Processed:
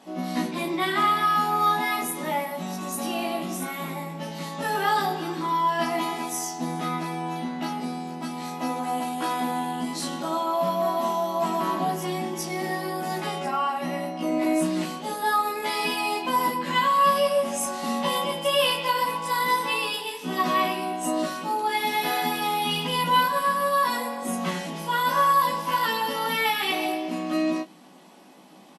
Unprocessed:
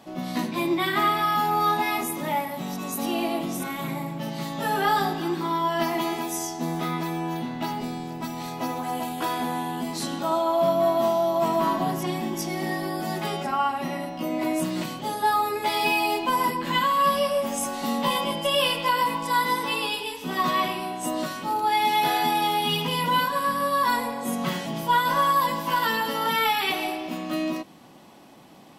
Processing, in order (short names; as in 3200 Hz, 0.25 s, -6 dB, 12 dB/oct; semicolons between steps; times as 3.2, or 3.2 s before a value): high shelf 9500 Hz +4.5 dB; early reflections 16 ms -3.5 dB, 35 ms -10.5 dB; FFT band-pass 140–12000 Hz; gain -2.5 dB; Nellymoser 88 kbps 44100 Hz